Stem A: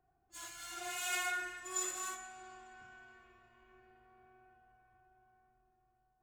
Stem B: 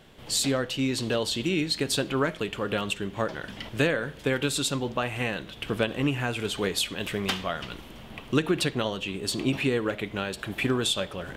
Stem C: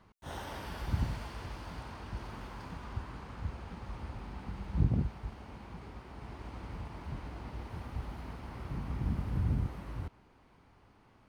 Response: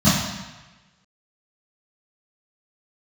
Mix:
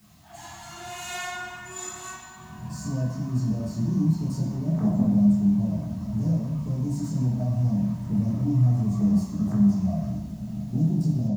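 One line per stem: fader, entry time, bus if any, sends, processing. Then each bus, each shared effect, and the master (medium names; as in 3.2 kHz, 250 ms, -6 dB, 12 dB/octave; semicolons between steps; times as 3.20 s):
-2.0 dB, 0.00 s, send -15 dB, none
-15.5 dB, 2.40 s, send -11 dB, saturation -28 dBFS, distortion -8 dB; elliptic band-stop 750–5400 Hz
-15.5 dB, 0.00 s, send -15 dB, formants replaced by sine waves; high-pass 480 Hz 6 dB/octave; word length cut 8-bit, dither triangular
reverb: on, RT60 1.2 s, pre-delay 3 ms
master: bass shelf 270 Hz +7 dB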